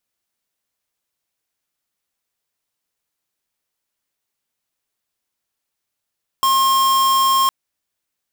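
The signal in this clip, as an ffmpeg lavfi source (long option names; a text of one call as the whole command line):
ffmpeg -f lavfi -i "aevalsrc='0.178*(2*lt(mod(1070*t,1),0.5)-1)':duration=1.06:sample_rate=44100" out.wav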